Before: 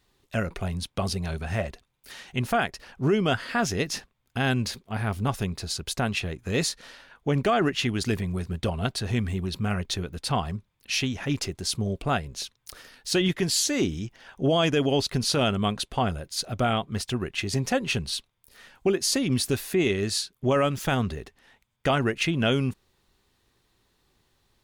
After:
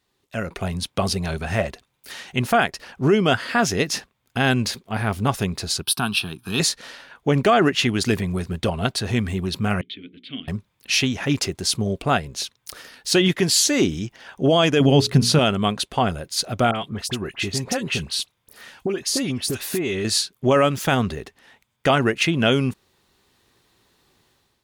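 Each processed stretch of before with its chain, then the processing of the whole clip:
0:05.82–0:06.60: high-pass filter 140 Hz + parametric band 10,000 Hz +13 dB 1.4 octaves + phaser with its sweep stopped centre 2,000 Hz, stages 6
0:09.81–0:10.48: formant filter i + high shelf with overshoot 4,600 Hz −10 dB, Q 3 + mains-hum notches 60/120/180/240/300/360/420/480 Hz
0:14.80–0:15.39: parametric band 150 Hz +10.5 dB 1.6 octaves + mains-hum notches 60/120/180/240/300/360/420 Hz
0:16.71–0:20.05: downward compressor 5 to 1, threshold −27 dBFS + all-pass dispersion highs, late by 47 ms, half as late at 1,900 Hz
whole clip: high-pass filter 120 Hz 6 dB per octave; automatic gain control gain up to 10.5 dB; level −3 dB

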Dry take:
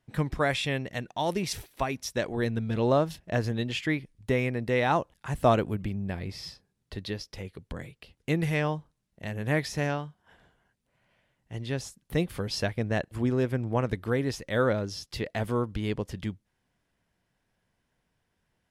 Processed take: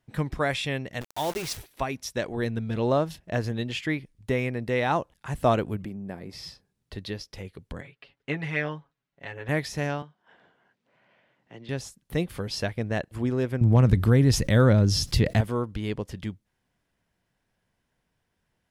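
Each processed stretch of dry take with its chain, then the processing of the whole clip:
0:01.01–0:01.57: parametric band 200 Hz −14 dB 0.25 octaves + bit-depth reduction 6 bits, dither none
0:05.85–0:06.33: high-pass filter 180 Hz + parametric band 3,200 Hz −11 dB 1.7 octaves
0:07.81–0:09.49: low-pass filter 2,000 Hz + spectral tilt +3.5 dB per octave + comb filter 7.2 ms, depth 81%
0:10.02–0:11.69: band-pass filter 220–4,400 Hz + multiband upward and downward compressor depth 40%
0:13.61–0:15.41: bass and treble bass +13 dB, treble +4 dB + hard clipping −8.5 dBFS + envelope flattener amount 50%
whole clip: no processing

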